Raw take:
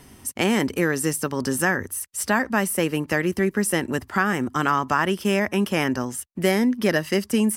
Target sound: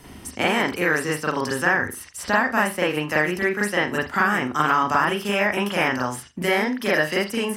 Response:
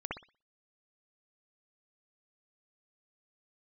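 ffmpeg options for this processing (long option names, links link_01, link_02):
-filter_complex "[1:a]atrim=start_sample=2205,asetrate=66150,aresample=44100[link_01];[0:a][link_01]afir=irnorm=-1:irlink=0,acrossover=split=600|2600|5800[link_02][link_03][link_04][link_05];[link_02]acompressor=threshold=-36dB:ratio=4[link_06];[link_03]acompressor=threshold=-25dB:ratio=4[link_07];[link_04]acompressor=threshold=-45dB:ratio=4[link_08];[link_05]acompressor=threshold=-46dB:ratio=4[link_09];[link_06][link_07][link_08][link_09]amix=inputs=4:normalize=0,volume=8dB"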